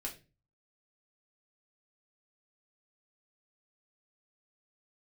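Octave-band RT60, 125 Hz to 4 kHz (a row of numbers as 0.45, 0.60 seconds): 0.60, 0.50, 0.35, 0.25, 0.30, 0.25 seconds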